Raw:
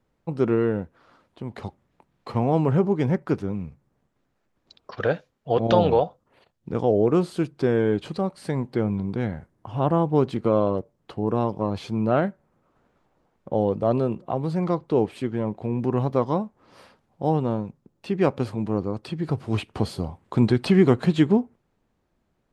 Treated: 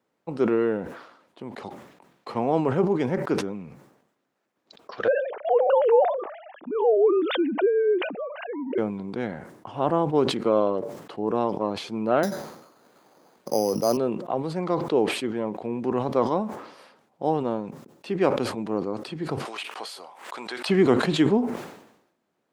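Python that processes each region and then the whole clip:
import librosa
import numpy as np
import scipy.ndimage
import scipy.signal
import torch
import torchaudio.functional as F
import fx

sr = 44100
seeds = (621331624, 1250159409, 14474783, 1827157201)

y = fx.chain(x, sr, fx.sine_speech(),
    fx.lowpass(hz=1100.0, slope=6),
    fx.pre_swell(db_per_s=64.0), at=(5.08, 8.78))
y = fx.chain(y, sr, fx.resample_bad(factor=8, down='none', up='hold'),
    fx.band_squash(depth_pct=40), at=(12.23, 13.97))
y = fx.chain(y, sr, fx.highpass(hz=890.0, slope=12),
    fx.pre_swell(db_per_s=85.0), at=(19.45, 20.69))
y = scipy.signal.sosfilt(scipy.signal.butter(2, 260.0, 'highpass', fs=sr, output='sos'), y)
y = fx.sustainer(y, sr, db_per_s=71.0)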